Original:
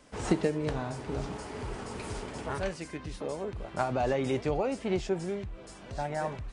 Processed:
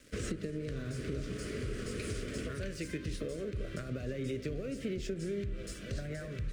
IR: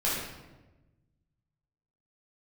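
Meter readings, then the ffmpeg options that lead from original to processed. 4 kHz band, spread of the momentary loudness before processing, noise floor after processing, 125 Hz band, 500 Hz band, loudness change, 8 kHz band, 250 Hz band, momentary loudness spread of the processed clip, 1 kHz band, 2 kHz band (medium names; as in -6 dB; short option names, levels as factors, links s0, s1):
-2.5 dB, 10 LU, -45 dBFS, -1.5 dB, -7.5 dB, -5.5 dB, -1.5 dB, -4.5 dB, 3 LU, -19.0 dB, -4.5 dB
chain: -filter_complex "[0:a]equalizer=f=960:w=2.2:g=3,acrossover=split=220[s0][s1];[s1]acompressor=threshold=0.0282:ratio=6[s2];[s0][s2]amix=inputs=2:normalize=0,asplit=2[s3][s4];[s4]alimiter=level_in=1.41:limit=0.0631:level=0:latency=1,volume=0.708,volume=0.75[s5];[s3][s5]amix=inputs=2:normalize=0,acompressor=threshold=0.02:ratio=6,aeval=exprs='sgn(val(0))*max(abs(val(0))-0.00168,0)':c=same,asuperstop=centerf=870:order=4:qfactor=0.89,asplit=2[s6][s7];[1:a]atrim=start_sample=2205,lowpass=2100[s8];[s7][s8]afir=irnorm=-1:irlink=0,volume=0.1[s9];[s6][s9]amix=inputs=2:normalize=0,volume=1.12"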